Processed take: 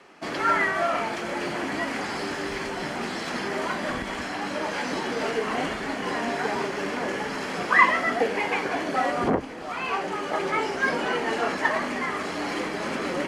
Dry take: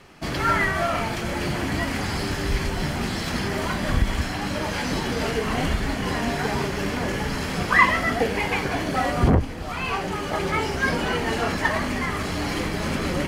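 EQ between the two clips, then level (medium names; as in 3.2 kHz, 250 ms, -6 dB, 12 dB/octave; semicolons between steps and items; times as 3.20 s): low-pass 8.8 kHz 12 dB/octave; tone controls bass -3 dB, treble +12 dB; three-band isolator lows -21 dB, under 200 Hz, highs -15 dB, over 2.6 kHz; 0.0 dB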